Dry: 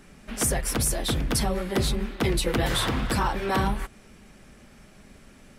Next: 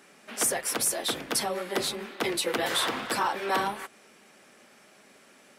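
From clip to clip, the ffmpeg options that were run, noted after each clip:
ffmpeg -i in.wav -af "highpass=390" out.wav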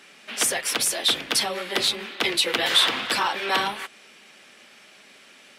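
ffmpeg -i in.wav -af "equalizer=frequency=3200:width=0.74:gain=11.5" out.wav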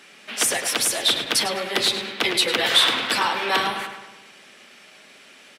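ffmpeg -i in.wav -filter_complex "[0:a]asplit=2[link_01][link_02];[link_02]adelay=103,lowpass=frequency=4300:poles=1,volume=-7.5dB,asplit=2[link_03][link_04];[link_04]adelay=103,lowpass=frequency=4300:poles=1,volume=0.54,asplit=2[link_05][link_06];[link_06]adelay=103,lowpass=frequency=4300:poles=1,volume=0.54,asplit=2[link_07][link_08];[link_08]adelay=103,lowpass=frequency=4300:poles=1,volume=0.54,asplit=2[link_09][link_10];[link_10]adelay=103,lowpass=frequency=4300:poles=1,volume=0.54,asplit=2[link_11][link_12];[link_12]adelay=103,lowpass=frequency=4300:poles=1,volume=0.54,asplit=2[link_13][link_14];[link_14]adelay=103,lowpass=frequency=4300:poles=1,volume=0.54[link_15];[link_01][link_03][link_05][link_07][link_09][link_11][link_13][link_15]amix=inputs=8:normalize=0,volume=1.5dB" out.wav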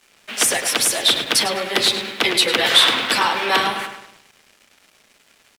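ffmpeg -i in.wav -af "aeval=exprs='sgn(val(0))*max(abs(val(0))-0.00473,0)':channel_layout=same,volume=4dB" out.wav

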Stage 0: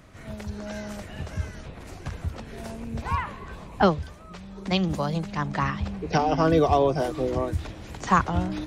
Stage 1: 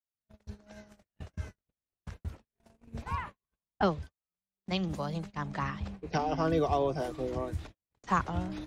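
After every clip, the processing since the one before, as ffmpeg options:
ffmpeg -i in.wav -af "agate=range=-53dB:threshold=-32dB:ratio=16:detection=peak,volume=-8dB" out.wav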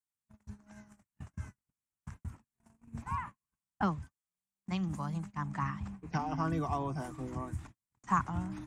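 ffmpeg -i in.wav -af "equalizer=frequency=125:width_type=o:width=1:gain=8,equalizer=frequency=250:width_type=o:width=1:gain=7,equalizer=frequency=500:width_type=o:width=1:gain=-11,equalizer=frequency=1000:width_type=o:width=1:gain=9,equalizer=frequency=2000:width_type=o:width=1:gain=3,equalizer=frequency=4000:width_type=o:width=1:gain=-9,equalizer=frequency=8000:width_type=o:width=1:gain=12,volume=-7.5dB" out.wav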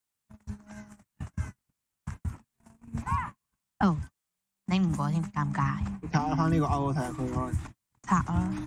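ffmpeg -i in.wav -filter_complex "[0:a]acrossover=split=330|3000[link_01][link_02][link_03];[link_02]acompressor=threshold=-37dB:ratio=2.5[link_04];[link_01][link_04][link_03]amix=inputs=3:normalize=0,volume=8.5dB" out.wav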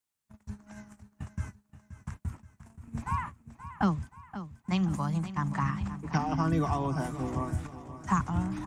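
ffmpeg -i in.wav -af "aecho=1:1:527|1054|1581|2108|2635:0.224|0.105|0.0495|0.0232|0.0109,volume=-2dB" out.wav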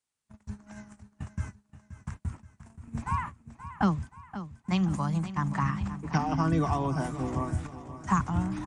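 ffmpeg -i in.wav -af "aresample=22050,aresample=44100,volume=1.5dB" out.wav

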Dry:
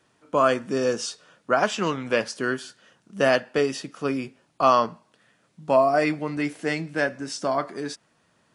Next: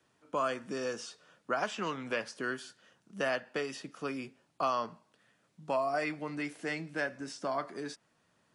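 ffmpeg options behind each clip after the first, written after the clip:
ffmpeg -i in.wav -filter_complex "[0:a]acrossover=split=130|770|2900[link_01][link_02][link_03][link_04];[link_01]acompressor=threshold=-54dB:ratio=4[link_05];[link_02]acompressor=threshold=-29dB:ratio=4[link_06];[link_03]acompressor=threshold=-24dB:ratio=4[link_07];[link_04]acompressor=threshold=-39dB:ratio=4[link_08];[link_05][link_06][link_07][link_08]amix=inputs=4:normalize=0,volume=-7dB" out.wav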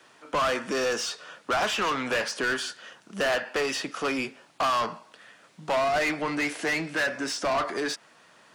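ffmpeg -i in.wav -filter_complex "[0:a]asplit=2[link_01][link_02];[link_02]highpass=frequency=720:poles=1,volume=25dB,asoftclip=type=tanh:threshold=-18dB[link_03];[link_01][link_03]amix=inputs=2:normalize=0,lowpass=frequency=5400:poles=1,volume=-6dB" out.wav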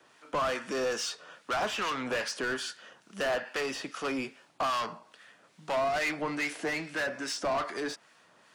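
ffmpeg -i in.wav -filter_complex "[0:a]acrossover=split=1200[link_01][link_02];[link_01]aeval=exprs='val(0)*(1-0.5/2+0.5/2*cos(2*PI*2.4*n/s))':channel_layout=same[link_03];[link_02]aeval=exprs='val(0)*(1-0.5/2-0.5/2*cos(2*PI*2.4*n/s))':channel_layout=same[link_04];[link_03][link_04]amix=inputs=2:normalize=0,volume=-2.5dB" out.wav

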